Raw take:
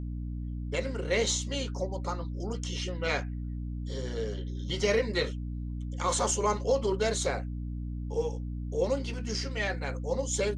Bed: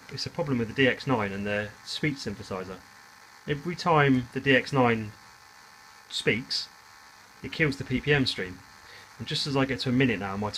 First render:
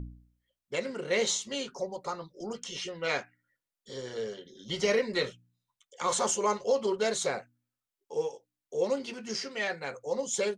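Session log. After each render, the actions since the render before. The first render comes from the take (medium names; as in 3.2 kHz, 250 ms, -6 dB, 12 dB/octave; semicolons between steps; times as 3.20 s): de-hum 60 Hz, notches 5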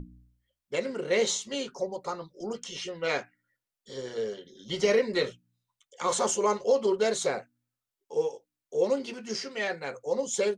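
hum notches 60/120 Hz; dynamic bell 380 Hz, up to +4 dB, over -40 dBFS, Q 0.87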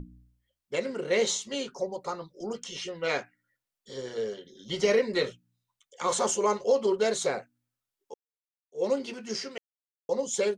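8.14–8.85 s: fade in exponential; 9.58–10.09 s: mute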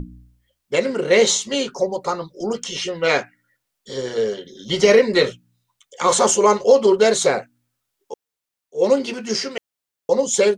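trim +11 dB; peak limiter -3 dBFS, peak gain reduction 1 dB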